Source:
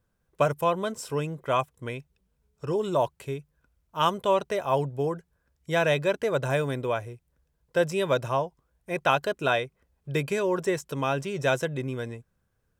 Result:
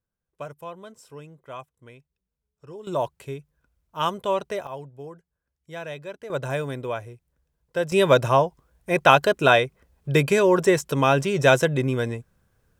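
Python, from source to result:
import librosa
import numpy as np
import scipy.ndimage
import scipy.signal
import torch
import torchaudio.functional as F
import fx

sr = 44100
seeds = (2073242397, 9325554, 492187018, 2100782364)

y = fx.gain(x, sr, db=fx.steps((0.0, -13.0), (2.87, -1.0), (4.67, -11.5), (6.3, -1.5), (7.92, 8.0)))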